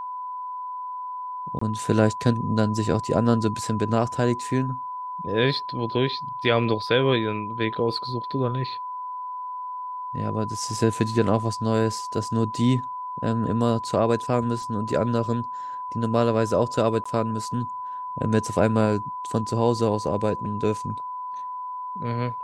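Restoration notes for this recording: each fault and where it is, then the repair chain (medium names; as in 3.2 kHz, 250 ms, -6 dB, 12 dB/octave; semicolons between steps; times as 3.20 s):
whine 1 kHz -30 dBFS
1.59–1.61 s: dropout 24 ms
17.04–17.05 s: dropout 15 ms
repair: band-stop 1 kHz, Q 30; interpolate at 1.59 s, 24 ms; interpolate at 17.04 s, 15 ms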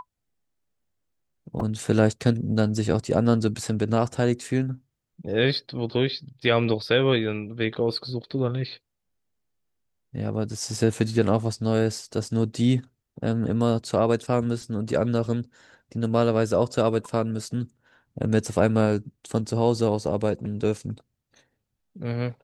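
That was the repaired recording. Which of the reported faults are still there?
nothing left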